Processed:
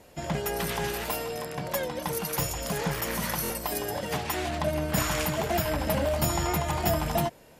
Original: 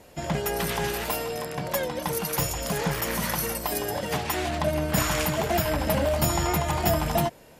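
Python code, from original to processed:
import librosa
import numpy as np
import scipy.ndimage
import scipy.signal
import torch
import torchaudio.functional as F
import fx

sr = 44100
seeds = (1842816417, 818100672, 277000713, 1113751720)

y = fx.buffer_glitch(x, sr, at_s=(3.43,), block=1024, repeats=2)
y = y * 10.0 ** (-2.5 / 20.0)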